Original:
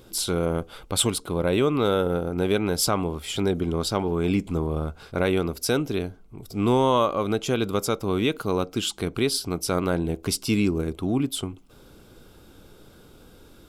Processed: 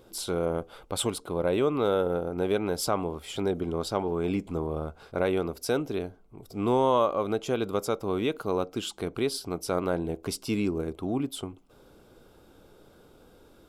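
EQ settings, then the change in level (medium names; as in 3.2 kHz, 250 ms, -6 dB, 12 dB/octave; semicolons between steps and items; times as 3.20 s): peaking EQ 640 Hz +7.5 dB 2.2 oct; -8.5 dB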